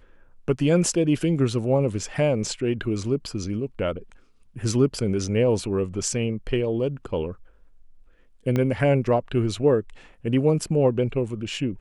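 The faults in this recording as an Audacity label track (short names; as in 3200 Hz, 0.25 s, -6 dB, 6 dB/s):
8.560000	8.560000	pop -13 dBFS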